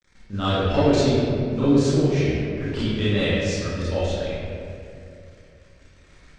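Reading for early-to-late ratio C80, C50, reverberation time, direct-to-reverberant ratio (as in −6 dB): −1.5 dB, −5.0 dB, 2.5 s, −12.0 dB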